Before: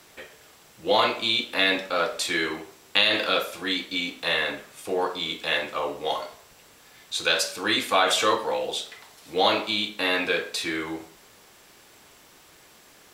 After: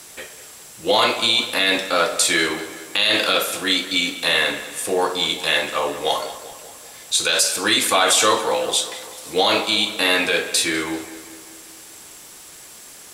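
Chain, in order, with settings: bell 9200 Hz +13 dB 1.4 oct; limiter -11.5 dBFS, peak gain reduction 10 dB; darkening echo 0.196 s, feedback 58%, low-pass 4100 Hz, level -14 dB; gain +5.5 dB

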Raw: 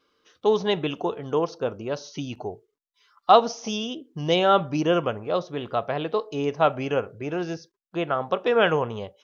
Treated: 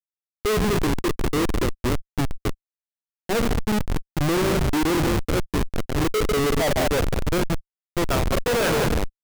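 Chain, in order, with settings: low-pass sweep 330 Hz -> 2300 Hz, 6–7.71; tapped delay 47/49/147/196/208 ms -17/-16.5/-11.5/-10/-18.5 dB; Schmitt trigger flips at -23 dBFS; sample leveller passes 5; gain -2.5 dB

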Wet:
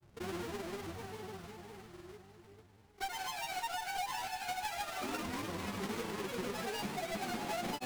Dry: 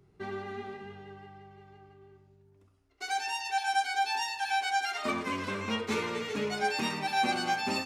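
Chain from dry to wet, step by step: half-waves squared off; diffused feedback echo 0.488 s, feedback 43%, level -10 dB; grains, grains 20/s, pitch spread up and down by 3 st; compressor 3:1, threshold -37 dBFS, peak gain reduction 11 dB; gain -2.5 dB

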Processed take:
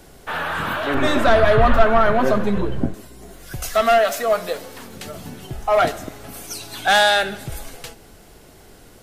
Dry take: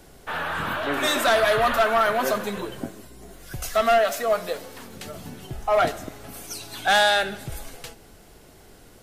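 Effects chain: 0.94–2.94 RIAA curve playback; gain +3.5 dB

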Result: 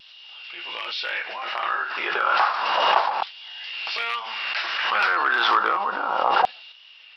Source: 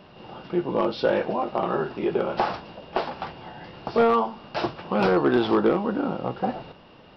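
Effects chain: LFO high-pass saw down 0.31 Hz 880–3400 Hz; vibrato 1.5 Hz 28 cents; backwards sustainer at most 25 dB/s; gain +3.5 dB

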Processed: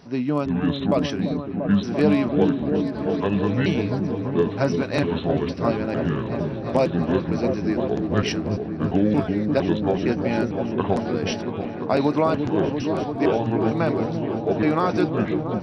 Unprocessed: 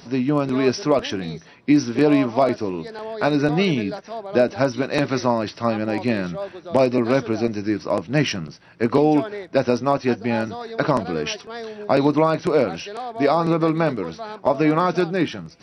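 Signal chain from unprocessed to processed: trilling pitch shifter -6.5 st, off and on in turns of 0.457 s; repeats that get brighter 0.342 s, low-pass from 400 Hz, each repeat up 1 oct, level -3 dB; mismatched tape noise reduction decoder only; gain -3 dB

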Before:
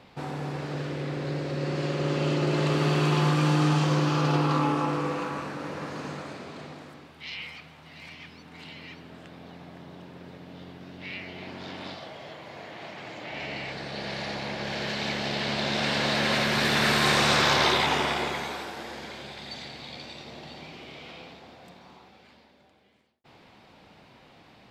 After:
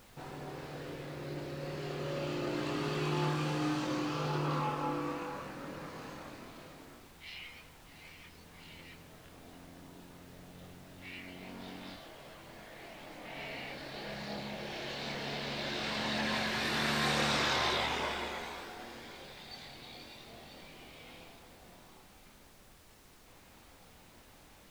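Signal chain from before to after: chorus voices 4, 0.27 Hz, delay 24 ms, depth 2.2 ms; added noise pink -53 dBFS; gain -6 dB

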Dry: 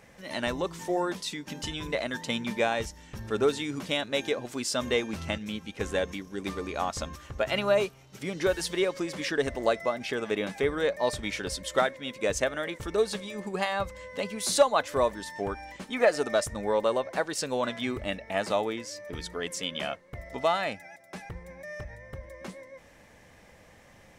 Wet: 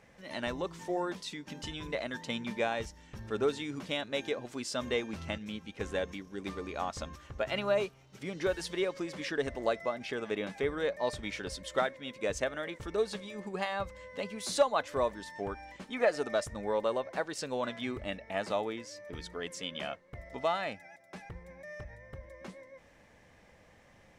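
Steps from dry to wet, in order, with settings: high shelf 9200 Hz -10.5 dB; gain -5 dB

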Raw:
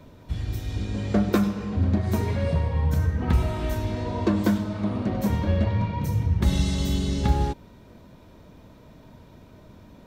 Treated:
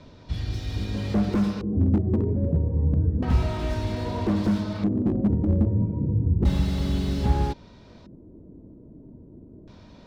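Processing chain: LFO low-pass square 0.31 Hz 340–4900 Hz; slew limiter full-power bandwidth 33 Hz

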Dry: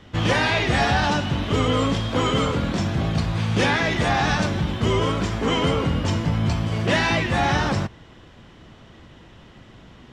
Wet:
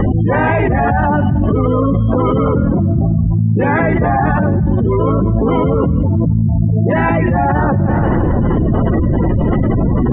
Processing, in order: spectral gate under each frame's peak -15 dB strong; Gaussian blur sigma 5.1 samples; on a send: thinning echo 0.172 s, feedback 44%, high-pass 180 Hz, level -19.5 dB; on the sum: fast leveller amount 100%; gain +5.5 dB

